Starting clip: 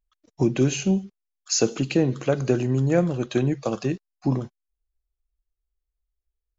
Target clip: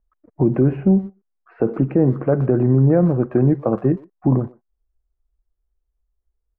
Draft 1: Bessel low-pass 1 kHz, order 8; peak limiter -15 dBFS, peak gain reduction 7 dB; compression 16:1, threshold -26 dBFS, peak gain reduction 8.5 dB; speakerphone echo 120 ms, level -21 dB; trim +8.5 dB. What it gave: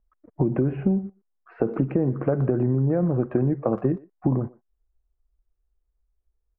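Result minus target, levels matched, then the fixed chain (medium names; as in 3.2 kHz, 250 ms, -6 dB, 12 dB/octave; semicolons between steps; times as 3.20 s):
compression: peak gain reduction +8.5 dB
Bessel low-pass 1 kHz, order 8; peak limiter -15 dBFS, peak gain reduction 7 dB; speakerphone echo 120 ms, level -21 dB; trim +8.5 dB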